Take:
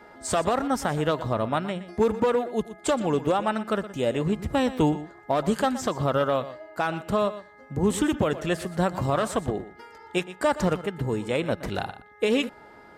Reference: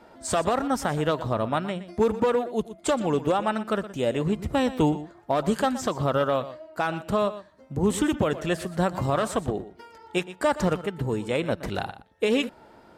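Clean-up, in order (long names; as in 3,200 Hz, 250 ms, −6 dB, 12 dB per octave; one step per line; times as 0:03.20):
hum removal 416.8 Hz, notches 5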